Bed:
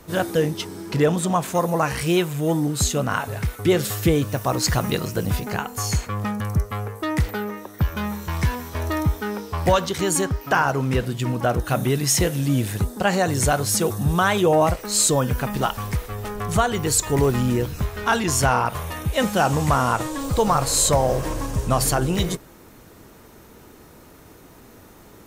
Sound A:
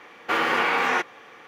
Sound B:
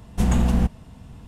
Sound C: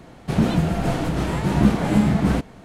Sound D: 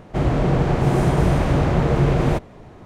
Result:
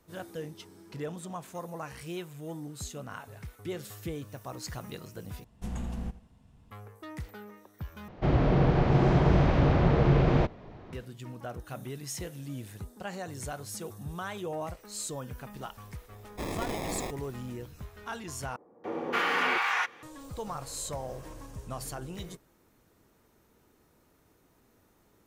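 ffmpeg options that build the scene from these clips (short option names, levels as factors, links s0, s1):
-filter_complex "[1:a]asplit=2[s0][s1];[0:a]volume=0.119[s2];[2:a]aecho=1:1:84|168|252:0.158|0.0586|0.0217[s3];[4:a]lowpass=f=5200:w=0.5412,lowpass=f=5200:w=1.3066[s4];[s0]acrusher=samples=30:mix=1:aa=0.000001[s5];[s1]acrossover=split=730[s6][s7];[s7]adelay=280[s8];[s6][s8]amix=inputs=2:normalize=0[s9];[s2]asplit=4[s10][s11][s12][s13];[s10]atrim=end=5.444[s14];[s3]atrim=end=1.27,asetpts=PTS-STARTPTS,volume=0.15[s15];[s11]atrim=start=6.706:end=8.084[s16];[s4]atrim=end=2.85,asetpts=PTS-STARTPTS,volume=0.562[s17];[s12]atrim=start=10.926:end=18.564[s18];[s9]atrim=end=1.47,asetpts=PTS-STARTPTS,volume=0.631[s19];[s13]atrim=start=20.026[s20];[s5]atrim=end=1.47,asetpts=PTS-STARTPTS,volume=0.237,afade=t=in:d=0.004:c=hsin,afade=t=out:st=1.466:d=0.004:c=hsin,adelay=16090[s21];[s14][s15]acrossfade=d=0.004:c1=hsin:c2=hsin[s22];[s22][s16]acrossfade=d=0.004:c1=hsin:c2=hsin[s23];[s23][s17]acrossfade=d=0.004:c1=hsin:c2=hsin[s24];[s24][s18]acrossfade=d=0.004:c1=hsin:c2=hsin[s25];[s25][s19]acrossfade=d=0.004:c1=hsin:c2=hsin[s26];[s26][s20]acrossfade=d=0.004:c1=hsin:c2=hsin[s27];[s27][s21]amix=inputs=2:normalize=0"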